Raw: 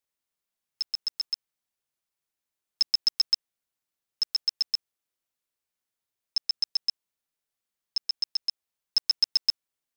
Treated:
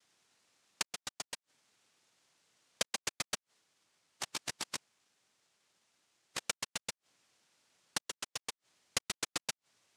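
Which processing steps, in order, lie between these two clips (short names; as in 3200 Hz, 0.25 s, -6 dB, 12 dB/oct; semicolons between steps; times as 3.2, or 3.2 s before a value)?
spectral delete 3.6–6.47, 2600–6200 Hz; flipped gate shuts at -25 dBFS, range -35 dB; noise vocoder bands 1; limiter -30 dBFS, peak gain reduction 9.5 dB; gain +13.5 dB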